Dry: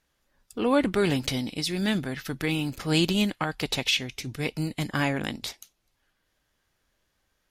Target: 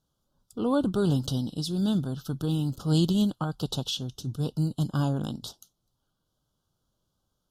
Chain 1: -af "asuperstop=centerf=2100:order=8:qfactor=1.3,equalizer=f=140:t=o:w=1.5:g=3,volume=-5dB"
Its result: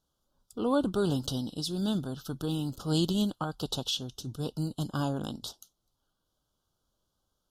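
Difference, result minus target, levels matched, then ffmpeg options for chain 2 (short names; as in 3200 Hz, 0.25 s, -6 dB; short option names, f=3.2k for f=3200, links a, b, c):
125 Hz band -3.0 dB
-af "asuperstop=centerf=2100:order=8:qfactor=1.3,equalizer=f=140:t=o:w=1.5:g=10,volume=-5dB"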